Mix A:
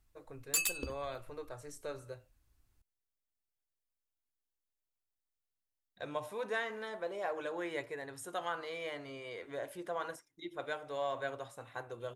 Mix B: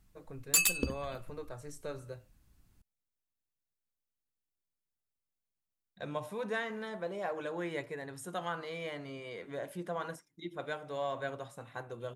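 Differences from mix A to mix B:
background +5.5 dB
master: add parametric band 180 Hz +13.5 dB 0.73 octaves

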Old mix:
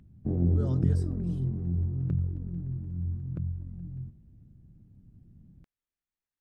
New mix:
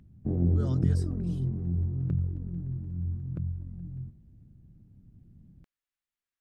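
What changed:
speech: add tilt shelving filter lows −6.5 dB, about 660 Hz
reverb: off

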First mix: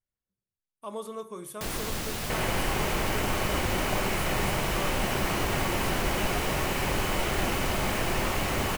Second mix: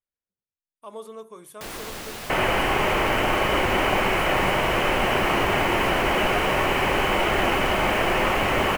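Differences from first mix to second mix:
speech: send off
second sound +9.5 dB
master: add bass and treble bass −8 dB, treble −3 dB

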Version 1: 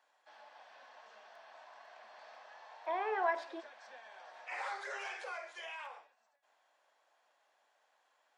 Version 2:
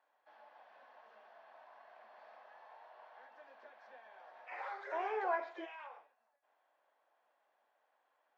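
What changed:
speech: entry +2.05 s
master: add head-to-tape spacing loss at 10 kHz 31 dB

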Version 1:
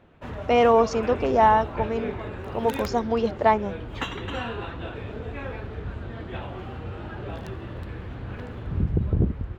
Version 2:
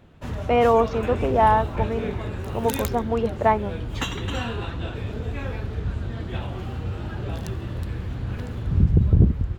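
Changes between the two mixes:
speech: add band-pass filter 100–2,900 Hz
background: add bass and treble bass +7 dB, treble +13 dB

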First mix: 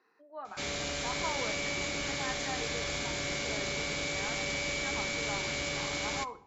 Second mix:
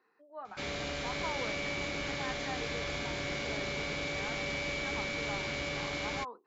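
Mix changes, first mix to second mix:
speech: send off
master: add high-frequency loss of the air 130 metres

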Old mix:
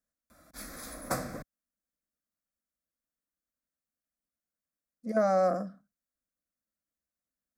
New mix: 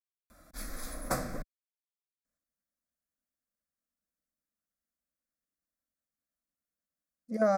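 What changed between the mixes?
speech: entry +2.25 s
background: remove high-pass filter 65 Hz

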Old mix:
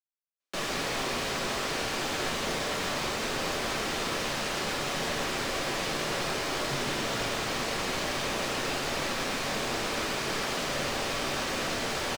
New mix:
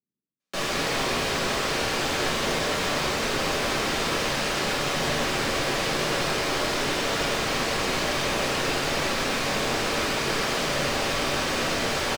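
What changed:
speech: entry −1.65 s
background: send +8.0 dB

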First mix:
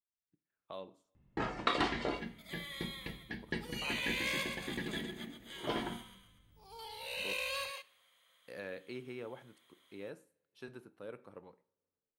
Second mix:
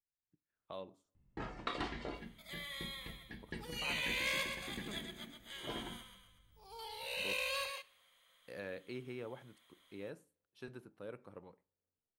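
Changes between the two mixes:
speech: send −10.5 dB
first sound −8.5 dB
master: add low-shelf EQ 89 Hz +10.5 dB

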